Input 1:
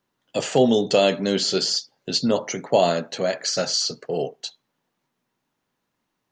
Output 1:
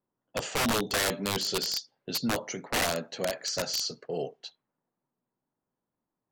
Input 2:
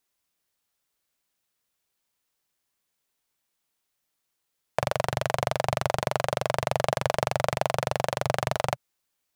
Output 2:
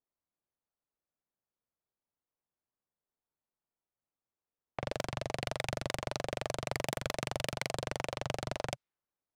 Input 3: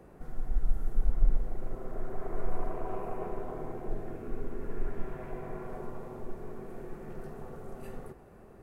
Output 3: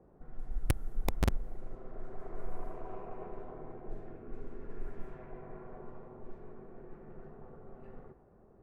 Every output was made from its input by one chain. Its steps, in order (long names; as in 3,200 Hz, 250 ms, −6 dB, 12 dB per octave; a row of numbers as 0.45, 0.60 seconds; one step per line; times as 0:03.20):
wrap-around overflow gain 13.5 dB
low-pass that shuts in the quiet parts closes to 1,000 Hz, open at −22.5 dBFS
level −7.5 dB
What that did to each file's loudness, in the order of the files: −8.0, −9.5, −4.5 LU